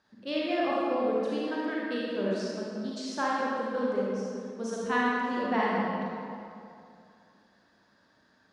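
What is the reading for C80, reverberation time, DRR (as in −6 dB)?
−1.5 dB, 2.5 s, −6.0 dB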